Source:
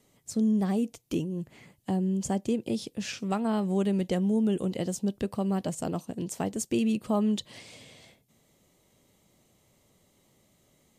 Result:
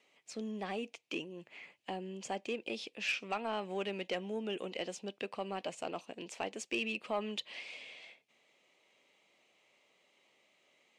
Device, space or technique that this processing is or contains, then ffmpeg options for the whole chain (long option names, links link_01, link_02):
intercom: -af "highpass=490,lowpass=4700,equalizer=frequency=2500:width_type=o:width=0.58:gain=12,asoftclip=type=tanh:threshold=-22dB,volume=-2.5dB"